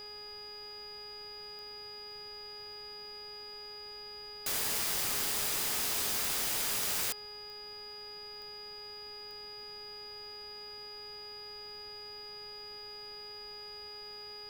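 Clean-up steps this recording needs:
click removal
hum removal 417.2 Hz, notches 9
notch filter 4,900 Hz, Q 30
noise reduction from a noise print 30 dB

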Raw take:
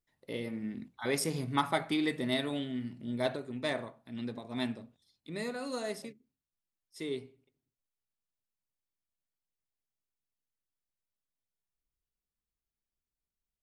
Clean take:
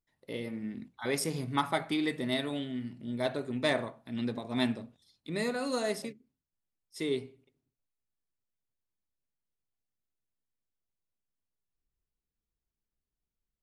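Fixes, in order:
level correction +5 dB, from 0:03.36

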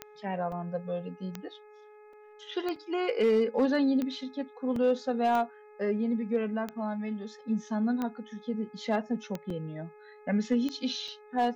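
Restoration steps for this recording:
clipped peaks rebuilt −19 dBFS
click removal
hum removal 421.9 Hz, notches 6
repair the gap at 0:00.52/0:02.13/0:02.76/0:04.76/0:09.50/0:11.08, 3.4 ms

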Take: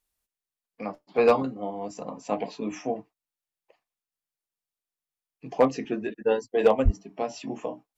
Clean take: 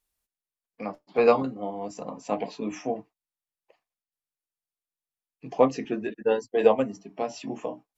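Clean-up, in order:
clipped peaks rebuilt −10.5 dBFS
0:06.84–0:06.96: high-pass filter 140 Hz 24 dB per octave

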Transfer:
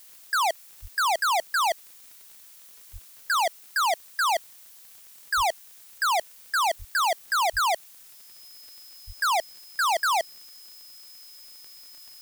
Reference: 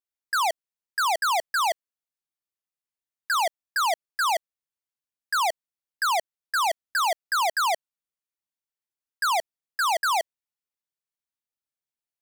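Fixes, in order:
click removal
notch filter 5,100 Hz, Q 30
high-pass at the plosives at 0:00.81/0:02.92/0:05.36/0:06.78/0:07.52/0:09.06
noise reduction from a noise print 30 dB

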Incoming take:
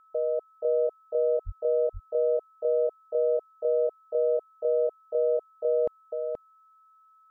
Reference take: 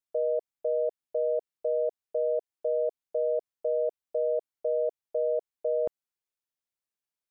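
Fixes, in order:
notch filter 1,300 Hz, Q 30
high-pass at the plosives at 0:01.45
echo removal 477 ms −4 dB

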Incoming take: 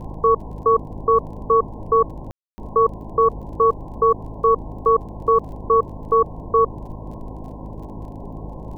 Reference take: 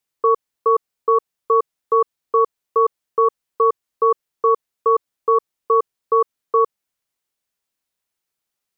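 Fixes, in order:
click removal
hum removal 52.8 Hz, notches 6
ambience match 0:02.31–0:02.58
noise reduction from a noise print 30 dB

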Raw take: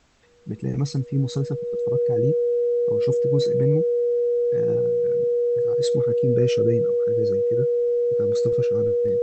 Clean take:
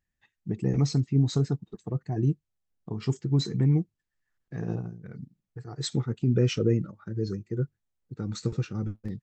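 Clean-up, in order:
notch filter 480 Hz, Q 30
downward expander −22 dBFS, range −21 dB

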